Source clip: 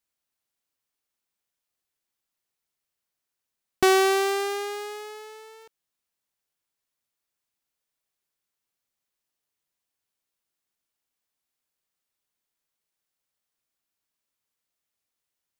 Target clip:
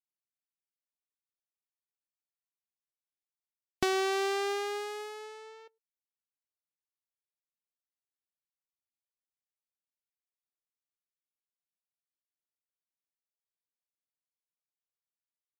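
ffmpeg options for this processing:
-filter_complex "[0:a]asplit=2[s0][s1];[s1]adelay=105,volume=0.0794,highshelf=f=4000:g=-2.36[s2];[s0][s2]amix=inputs=2:normalize=0,afftdn=nr=22:nf=-55,acrossover=split=2500|7400[s3][s4][s5];[s3]acompressor=threshold=0.0501:ratio=4[s6];[s4]acompressor=threshold=0.0251:ratio=4[s7];[s5]acompressor=threshold=0.00316:ratio=4[s8];[s6][s7][s8]amix=inputs=3:normalize=0,volume=0.75"

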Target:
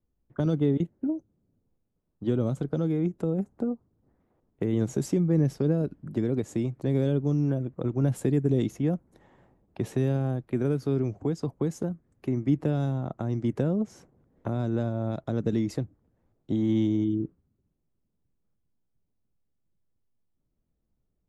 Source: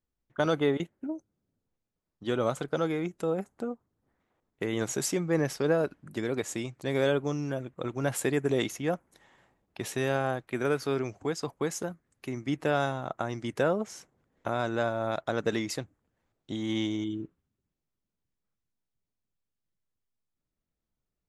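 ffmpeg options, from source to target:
-filter_complex "[0:a]acrossover=split=290|3000[s0][s1][s2];[s1]acompressor=threshold=0.0112:ratio=6[s3];[s0][s3][s2]amix=inputs=3:normalize=0,tiltshelf=f=1100:g=10"

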